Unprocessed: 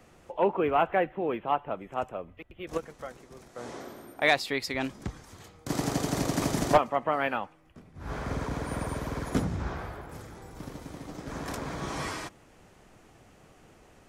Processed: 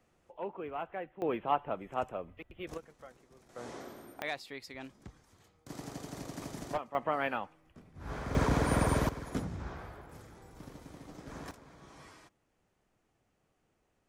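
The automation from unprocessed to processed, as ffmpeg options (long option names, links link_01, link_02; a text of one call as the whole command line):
ffmpeg -i in.wav -af "asetnsamples=nb_out_samples=441:pad=0,asendcmd='1.22 volume volume -2.5dB;2.74 volume volume -11.5dB;3.49 volume volume -4dB;4.22 volume volume -14.5dB;6.95 volume volume -4.5dB;8.35 volume volume 5dB;9.09 volume volume -8dB;11.51 volume volume -20dB',volume=-14.5dB" out.wav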